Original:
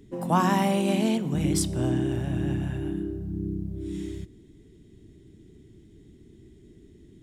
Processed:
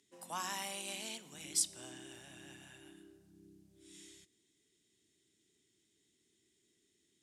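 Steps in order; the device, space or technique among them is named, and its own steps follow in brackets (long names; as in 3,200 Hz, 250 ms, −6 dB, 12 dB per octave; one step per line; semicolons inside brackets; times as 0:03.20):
piezo pickup straight into a mixer (low-pass filter 8,600 Hz 12 dB per octave; first difference)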